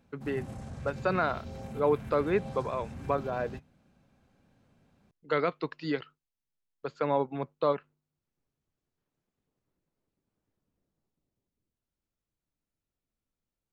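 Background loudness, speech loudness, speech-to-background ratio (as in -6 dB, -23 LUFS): -42.5 LUFS, -31.5 LUFS, 11.0 dB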